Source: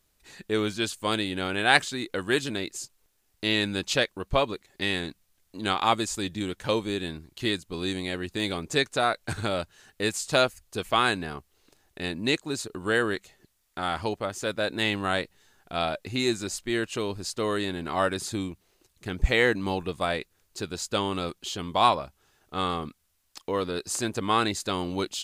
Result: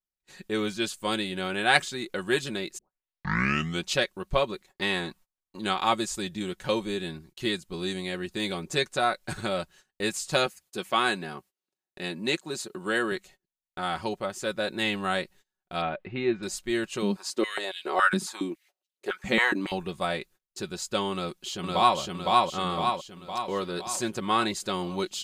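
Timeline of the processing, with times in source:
0:02.78: tape start 1.10 s
0:04.68–0:05.59: parametric band 1,000 Hz +9.5 dB 1.1 octaves
0:10.46–0:13.12: high-pass filter 160 Hz
0:15.81–0:16.43: low-pass filter 2,700 Hz 24 dB per octave
0:17.02–0:19.72: high-pass on a step sequencer 7.2 Hz 200–3,100 Hz
0:21.12–0:21.98: delay throw 510 ms, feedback 55%, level −0.5 dB
whole clip: noise gate −50 dBFS, range −27 dB; comb filter 5.4 ms, depth 54%; level −2.5 dB

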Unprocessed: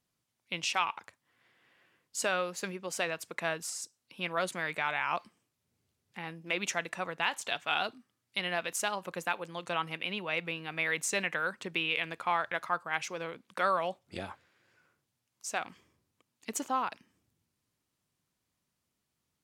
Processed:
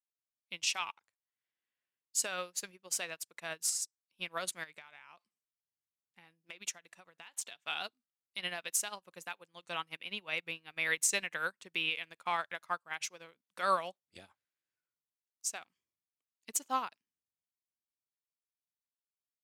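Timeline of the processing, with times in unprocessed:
0:04.63–0:07.64: downward compressor 8 to 1, threshold −34 dBFS
whole clip: high-shelf EQ 2,700 Hz +12 dB; brickwall limiter −17 dBFS; expander for the loud parts 2.5 to 1, over −46 dBFS

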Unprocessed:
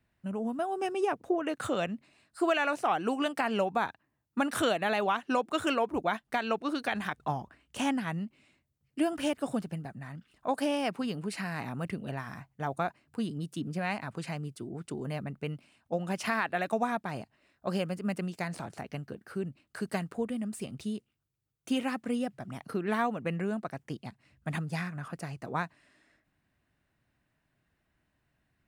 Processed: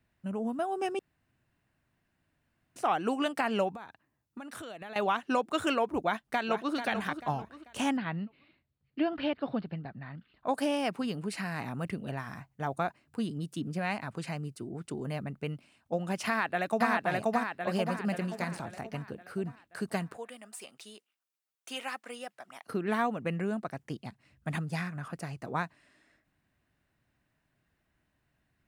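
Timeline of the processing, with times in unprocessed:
0:00.99–0:02.76: fill with room tone
0:03.75–0:04.96: downward compressor, threshold −41 dBFS
0:06.01–0:06.75: delay throw 440 ms, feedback 35%, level −8.5 dB
0:07.97–0:10.47: elliptic low-pass filter 4,400 Hz
0:14.29–0:14.76: notch filter 3,400 Hz, Q 9.3
0:16.27–0:16.90: delay throw 530 ms, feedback 50%, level 0 dB
0:17.71–0:18.23: delay throw 330 ms, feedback 25%, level −14.5 dB
0:20.17–0:22.68: high-pass filter 730 Hz

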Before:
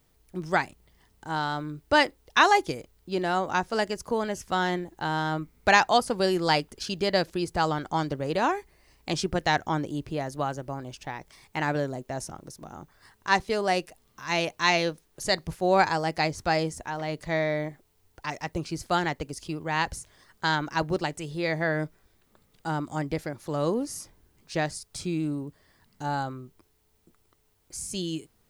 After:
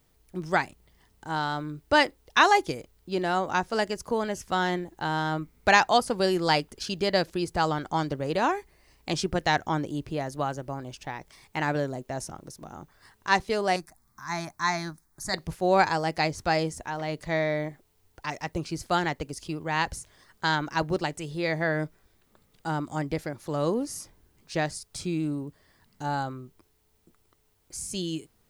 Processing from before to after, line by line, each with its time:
0:13.76–0:15.34: phaser with its sweep stopped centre 1,200 Hz, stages 4

